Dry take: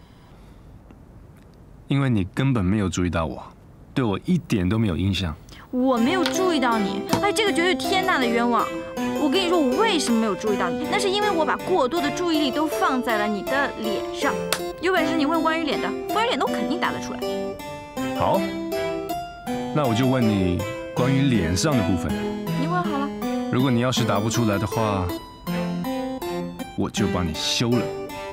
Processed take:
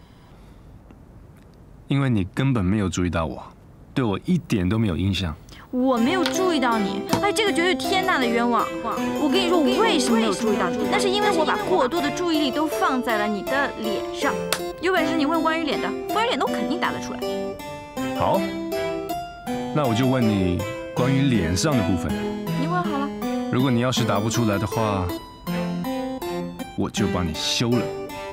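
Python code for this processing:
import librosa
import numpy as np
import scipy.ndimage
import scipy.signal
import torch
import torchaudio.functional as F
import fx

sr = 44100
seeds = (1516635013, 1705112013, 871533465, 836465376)

y = fx.echo_single(x, sr, ms=324, db=-6.5, at=(8.83, 12.0), fade=0.02)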